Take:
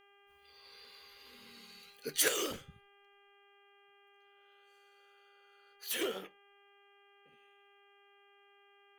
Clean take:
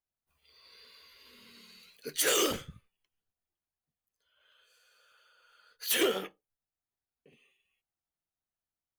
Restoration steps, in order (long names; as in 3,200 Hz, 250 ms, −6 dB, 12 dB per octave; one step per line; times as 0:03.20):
hum removal 401.1 Hz, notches 8
level 0 dB, from 0:02.28 +8 dB